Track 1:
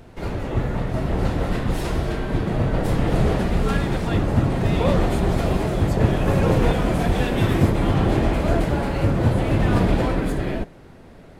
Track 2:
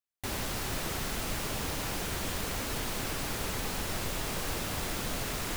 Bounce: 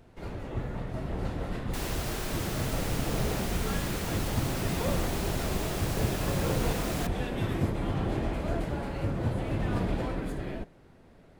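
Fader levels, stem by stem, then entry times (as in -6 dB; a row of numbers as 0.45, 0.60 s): -11.0, -2.0 dB; 0.00, 1.50 s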